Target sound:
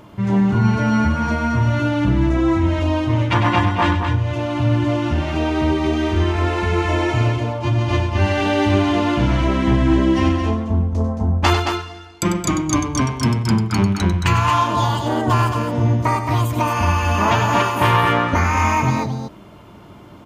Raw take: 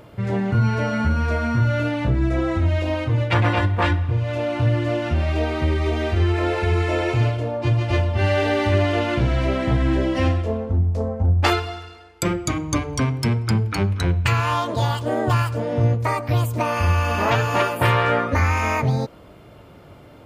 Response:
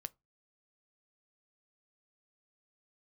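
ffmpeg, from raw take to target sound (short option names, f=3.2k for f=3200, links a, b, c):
-af "equalizer=f=200:t=o:w=0.33:g=8,equalizer=f=315:t=o:w=0.33:g=5,equalizer=f=500:t=o:w=0.33:g=-6,equalizer=f=1k:t=o:w=0.33:g=8,equalizer=f=3.15k:t=o:w=0.33:g=3,equalizer=f=6.3k:t=o:w=0.33:g=6,aecho=1:1:96.21|221.6:0.355|0.501"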